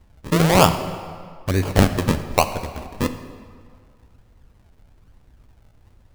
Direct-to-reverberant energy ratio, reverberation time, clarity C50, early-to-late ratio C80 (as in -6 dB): 9.0 dB, 2.0 s, 10.5 dB, 11.5 dB